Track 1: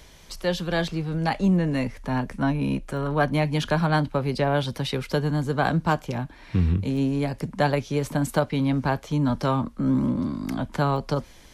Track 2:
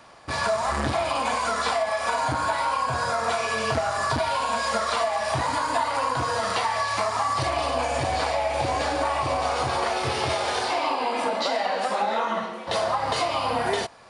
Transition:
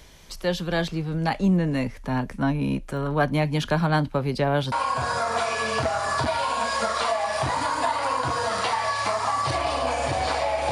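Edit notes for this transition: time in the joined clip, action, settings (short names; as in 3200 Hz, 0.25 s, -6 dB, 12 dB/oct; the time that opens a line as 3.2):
track 1
4.72 switch to track 2 from 2.64 s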